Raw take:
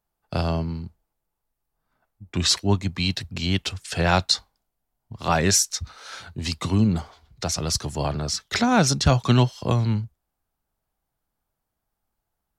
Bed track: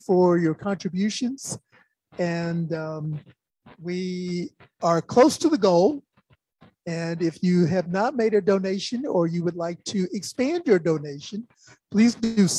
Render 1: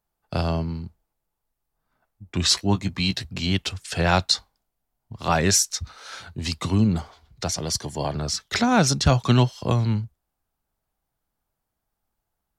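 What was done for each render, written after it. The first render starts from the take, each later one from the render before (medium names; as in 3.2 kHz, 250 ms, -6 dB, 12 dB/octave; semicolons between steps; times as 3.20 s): 2.47–3.52 s: doubling 16 ms -8.5 dB; 7.50–8.15 s: comb of notches 1.3 kHz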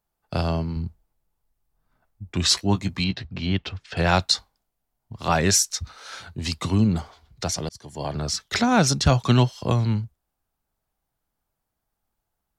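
0.76–2.34 s: bass shelf 170 Hz +8.5 dB; 3.04–3.97 s: distance through air 230 m; 7.69–8.19 s: fade in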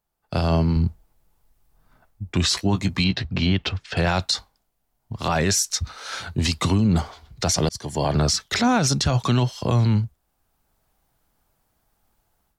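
level rider gain up to 11.5 dB; peak limiter -11.5 dBFS, peak gain reduction 10.5 dB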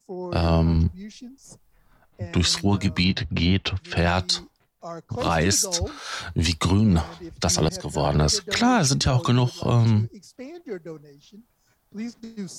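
add bed track -15 dB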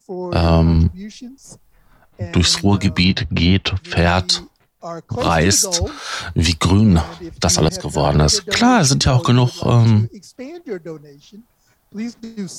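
trim +6.5 dB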